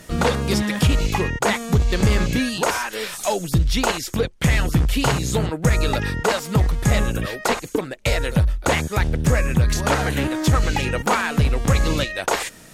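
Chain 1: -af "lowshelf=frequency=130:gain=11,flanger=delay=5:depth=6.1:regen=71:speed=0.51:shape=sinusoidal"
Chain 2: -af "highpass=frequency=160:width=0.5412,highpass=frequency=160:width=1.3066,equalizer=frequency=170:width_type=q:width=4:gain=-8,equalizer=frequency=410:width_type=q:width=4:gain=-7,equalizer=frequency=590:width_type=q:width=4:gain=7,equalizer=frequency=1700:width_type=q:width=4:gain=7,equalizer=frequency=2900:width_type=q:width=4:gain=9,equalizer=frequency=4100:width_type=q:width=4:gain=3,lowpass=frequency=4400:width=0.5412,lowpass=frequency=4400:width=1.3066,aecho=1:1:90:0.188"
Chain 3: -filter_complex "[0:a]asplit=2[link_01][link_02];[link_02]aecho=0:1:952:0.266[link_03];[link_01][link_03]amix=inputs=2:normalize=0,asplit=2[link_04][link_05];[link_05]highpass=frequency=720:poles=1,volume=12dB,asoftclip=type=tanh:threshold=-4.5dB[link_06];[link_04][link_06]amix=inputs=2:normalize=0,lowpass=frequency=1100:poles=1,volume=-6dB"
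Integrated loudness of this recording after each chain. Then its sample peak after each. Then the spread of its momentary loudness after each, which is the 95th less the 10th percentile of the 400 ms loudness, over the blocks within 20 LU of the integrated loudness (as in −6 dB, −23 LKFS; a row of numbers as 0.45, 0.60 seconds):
−21.0, −21.0, −22.0 LKFS; −4.0, −3.5, −7.0 dBFS; 8, 5, 3 LU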